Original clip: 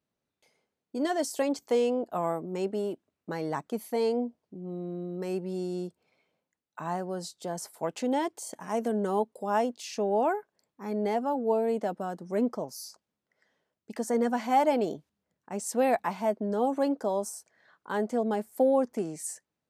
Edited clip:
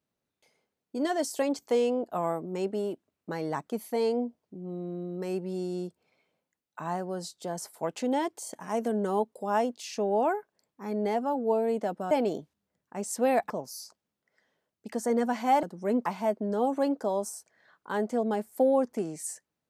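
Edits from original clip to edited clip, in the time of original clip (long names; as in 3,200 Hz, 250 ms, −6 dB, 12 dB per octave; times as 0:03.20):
0:12.11–0:12.54: swap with 0:14.67–0:16.06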